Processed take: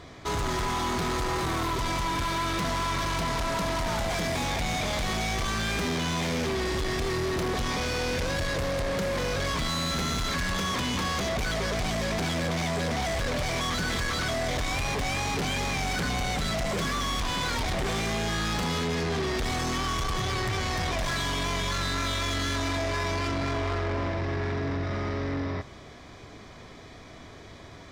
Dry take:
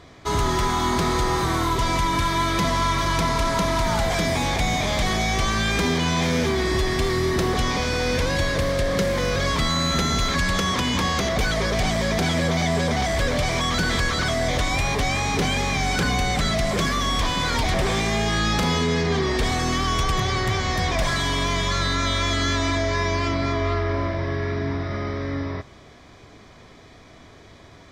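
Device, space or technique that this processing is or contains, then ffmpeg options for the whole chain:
saturation between pre-emphasis and de-emphasis: -af "highshelf=f=8.3k:g=7,asoftclip=type=tanh:threshold=-27dB,highshelf=f=8.3k:g=-7,volume=1dB"

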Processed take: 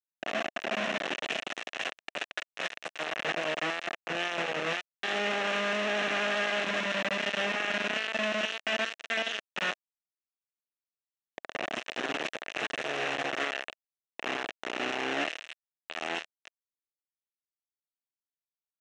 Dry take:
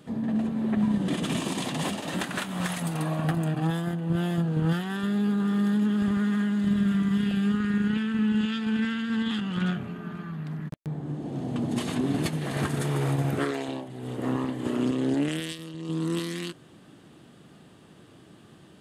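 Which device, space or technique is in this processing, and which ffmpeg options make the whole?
hand-held game console: -af "acrusher=bits=3:mix=0:aa=0.000001,highpass=440,equalizer=f=650:t=q:w=4:g=4,equalizer=f=960:t=q:w=4:g=-5,equalizer=f=1.8k:t=q:w=4:g=6,equalizer=f=2.7k:t=q:w=4:g=8,equalizer=f=4.7k:t=q:w=4:g=-10,lowpass=f=5.7k:w=0.5412,lowpass=f=5.7k:w=1.3066,volume=-5dB"

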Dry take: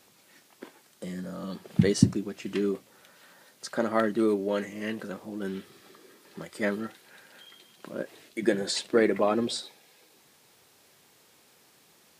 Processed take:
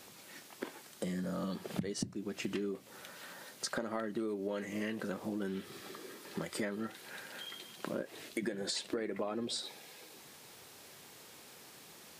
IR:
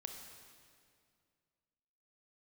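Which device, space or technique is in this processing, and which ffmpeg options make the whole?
serial compression, leveller first: -af "acompressor=threshold=-30dB:ratio=2,acompressor=threshold=-40dB:ratio=6,volume=5.5dB"

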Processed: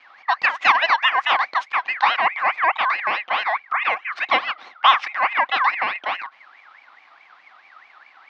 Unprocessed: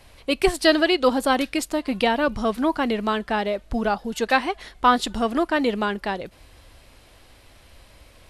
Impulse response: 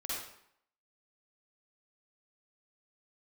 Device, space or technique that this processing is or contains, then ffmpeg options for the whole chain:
voice changer toy: -af "aeval=exprs='val(0)*sin(2*PI*1800*n/s+1800*0.3/4.7*sin(2*PI*4.7*n/s))':c=same,highpass=410,equalizer=f=430:t=q:w=4:g=-8,equalizer=f=780:t=q:w=4:g=10,equalizer=f=1.1k:t=q:w=4:g=10,equalizer=f=2.1k:t=q:w=4:g=4,lowpass=f=4k:w=0.5412,lowpass=f=4k:w=1.3066"

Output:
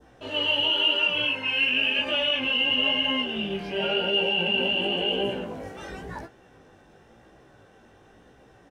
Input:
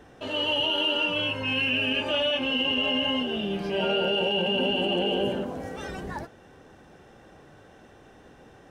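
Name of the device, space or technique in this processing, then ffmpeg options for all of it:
double-tracked vocal: -filter_complex "[0:a]asettb=1/sr,asplit=3[a][b][c];[a]atrim=end=1.234[d];[b]atrim=start=1.23:end=1.99,asetpts=PTS-STARTPTS,afade=t=in:d=0.004:c=qsin,afade=t=out:st=0.756:d=0.004:c=qsin,highpass=220[e];[c]atrim=start=1.986[f];[d][e]acrossfade=d=0.004:c1=hsin:c2=qsin[g];[g][f]acrossfade=d=0.004:c1=qsin:c2=hsin,adynamicequalizer=threshold=0.01:dfrequency=2300:dqfactor=1.1:tfrequency=2300:tqfactor=1.1:attack=5:release=100:ratio=0.375:range=3.5:mode=boostabove:tftype=bell,asplit=2[h][i];[i]adelay=18,volume=-12dB[j];[h][j]amix=inputs=2:normalize=0,flanger=delay=15:depth=6.3:speed=0.95"

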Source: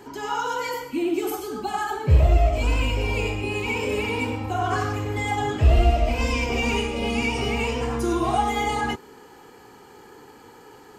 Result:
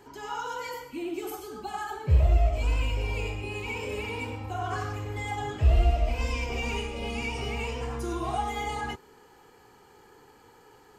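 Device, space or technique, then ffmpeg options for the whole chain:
low shelf boost with a cut just above: -af "lowshelf=f=60:g=7.5,equalizer=f=260:t=o:w=0.86:g=-4.5,volume=-7.5dB"

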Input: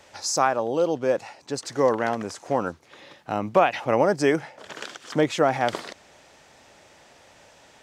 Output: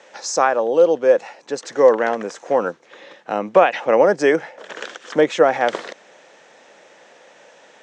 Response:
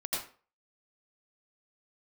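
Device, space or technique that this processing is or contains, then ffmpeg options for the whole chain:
television speaker: -af "highpass=f=190:w=0.5412,highpass=f=190:w=1.3066,equalizer=f=260:t=q:w=4:g=-4,equalizer=f=500:t=q:w=4:g=7,equalizer=f=1.7k:t=q:w=4:g=4,equalizer=f=4.7k:t=q:w=4:g=-6,lowpass=f=7.2k:w=0.5412,lowpass=f=7.2k:w=1.3066,volume=3.5dB"

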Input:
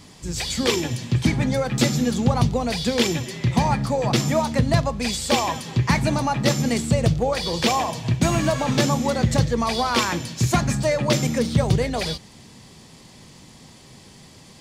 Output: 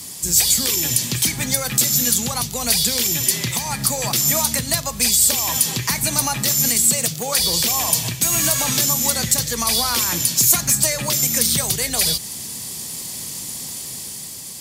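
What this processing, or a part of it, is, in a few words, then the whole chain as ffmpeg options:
FM broadcast chain: -filter_complex "[0:a]asettb=1/sr,asplit=3[a][b][c];[a]atrim=end=6.844[d];[b]atrim=start=6.84:end=7.39,asetpts=PTS-STARTPTS,afade=t=in:d=0.004:c=qsin,afade=t=out:st=0.546:d=0.004:c=qsin,highpass=f=140:w=0.5412,highpass=f=140:w=1.3066[e];[c]atrim=start=7.386[f];[d][e]acrossfade=d=0.004:c1=hsin:c2=qsin[g];[g][f]acrossfade=d=0.004:c1=qsin:c2=hsin,highpass=f=50:p=1,dynaudnorm=f=200:g=9:m=4dB,acrossover=split=150|1100[h][i][j];[h]acompressor=threshold=-32dB:ratio=4[k];[i]acompressor=threshold=-31dB:ratio=4[l];[j]acompressor=threshold=-28dB:ratio=4[m];[k][l][m]amix=inputs=3:normalize=0,aemphasis=mode=production:type=50fm,alimiter=limit=-14dB:level=0:latency=1:release=249,asoftclip=type=hard:threshold=-16.5dB,lowpass=f=15k:w=0.5412,lowpass=f=15k:w=1.3066,aemphasis=mode=production:type=50fm,volume=2.5dB"

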